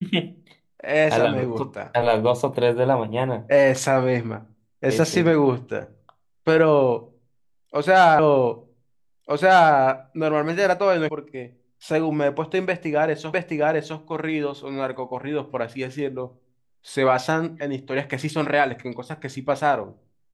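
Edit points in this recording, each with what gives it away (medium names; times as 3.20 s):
8.19 s: repeat of the last 1.55 s
11.09 s: sound stops dead
13.33 s: repeat of the last 0.66 s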